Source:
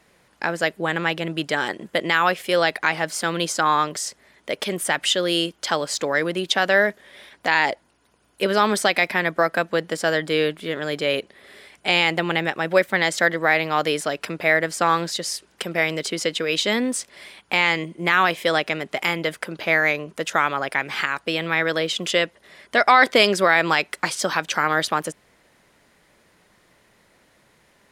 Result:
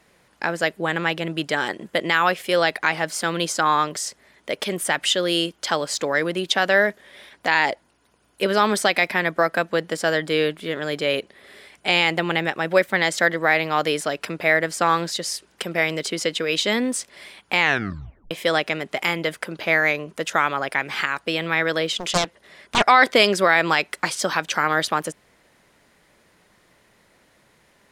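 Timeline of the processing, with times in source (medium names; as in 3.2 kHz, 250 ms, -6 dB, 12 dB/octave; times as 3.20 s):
17.60 s: tape stop 0.71 s
21.95–22.84 s: loudspeaker Doppler distortion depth 0.97 ms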